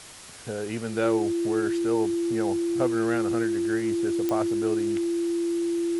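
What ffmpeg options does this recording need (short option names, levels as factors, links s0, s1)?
-af "adeclick=t=4,bandreject=f=340:w=30,afwtdn=0.0071"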